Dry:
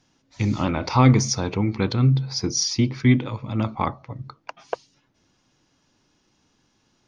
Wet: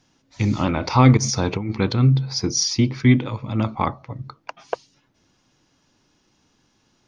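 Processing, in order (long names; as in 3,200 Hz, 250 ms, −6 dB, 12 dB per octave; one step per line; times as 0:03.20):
0:01.17–0:01.73: compressor whose output falls as the input rises −24 dBFS, ratio −0.5
level +2 dB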